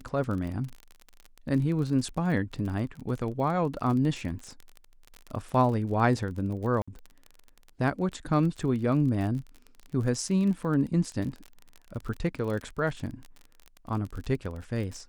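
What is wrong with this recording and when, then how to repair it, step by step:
crackle 31/s -34 dBFS
6.82–6.88 gap 55 ms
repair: de-click; interpolate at 6.82, 55 ms

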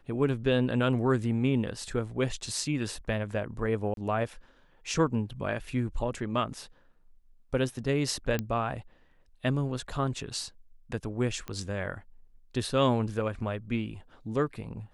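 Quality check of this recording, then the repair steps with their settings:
3.94–3.97 gap 32 ms
8.39 pop -16 dBFS
11.48 pop -22 dBFS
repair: de-click; interpolate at 3.94, 32 ms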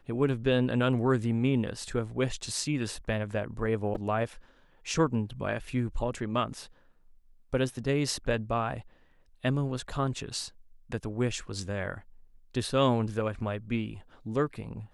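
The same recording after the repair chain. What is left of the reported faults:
none

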